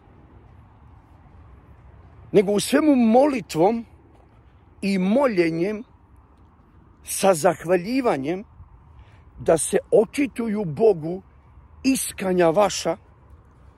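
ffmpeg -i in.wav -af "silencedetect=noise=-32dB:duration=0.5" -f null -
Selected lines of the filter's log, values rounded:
silence_start: 0.00
silence_end: 2.33 | silence_duration: 2.33
silence_start: 3.81
silence_end: 4.83 | silence_duration: 1.01
silence_start: 5.82
silence_end: 7.08 | silence_duration: 1.26
silence_start: 8.41
silence_end: 9.40 | silence_duration: 0.99
silence_start: 11.19
silence_end: 11.85 | silence_duration: 0.66
silence_start: 12.95
silence_end: 13.78 | silence_duration: 0.83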